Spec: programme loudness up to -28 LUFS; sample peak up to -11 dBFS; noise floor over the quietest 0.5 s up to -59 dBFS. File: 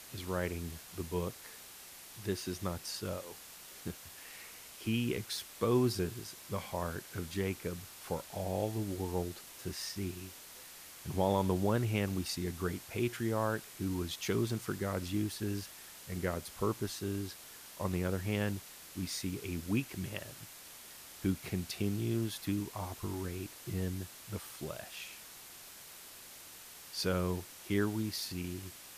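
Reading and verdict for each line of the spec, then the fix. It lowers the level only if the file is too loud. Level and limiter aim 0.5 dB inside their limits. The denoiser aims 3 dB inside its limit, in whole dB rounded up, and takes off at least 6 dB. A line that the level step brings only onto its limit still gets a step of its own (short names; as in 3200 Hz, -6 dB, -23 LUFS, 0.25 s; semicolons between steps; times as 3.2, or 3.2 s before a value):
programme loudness -37.0 LUFS: OK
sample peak -17.0 dBFS: OK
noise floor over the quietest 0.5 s -52 dBFS: fail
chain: denoiser 10 dB, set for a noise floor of -52 dBFS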